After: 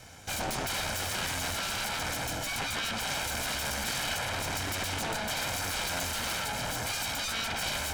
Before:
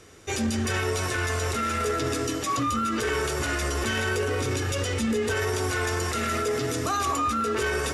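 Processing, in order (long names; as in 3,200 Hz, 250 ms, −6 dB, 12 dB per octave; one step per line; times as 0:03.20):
lower of the sound and its delayed copy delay 1.3 ms
harmonic generator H 3 −12 dB, 7 −7 dB, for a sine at −16.5 dBFS
level −6 dB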